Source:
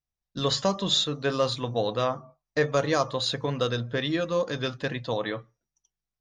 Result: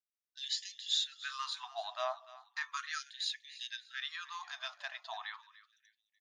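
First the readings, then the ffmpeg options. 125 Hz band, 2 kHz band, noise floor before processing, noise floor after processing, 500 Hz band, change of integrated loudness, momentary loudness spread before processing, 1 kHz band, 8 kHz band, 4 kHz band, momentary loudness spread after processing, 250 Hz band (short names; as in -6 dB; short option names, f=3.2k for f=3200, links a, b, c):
under -40 dB, -8.0 dB, under -85 dBFS, under -85 dBFS, -22.0 dB, -12.0 dB, 8 LU, -11.0 dB, -8.0 dB, -8.0 dB, 12 LU, under -40 dB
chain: -af "aecho=1:1:295|590|885:0.141|0.0509|0.0183,afftfilt=real='re*gte(b*sr/1024,580*pow(1700/580,0.5+0.5*sin(2*PI*0.36*pts/sr)))':imag='im*gte(b*sr/1024,580*pow(1700/580,0.5+0.5*sin(2*PI*0.36*pts/sr)))':win_size=1024:overlap=0.75,volume=-8dB"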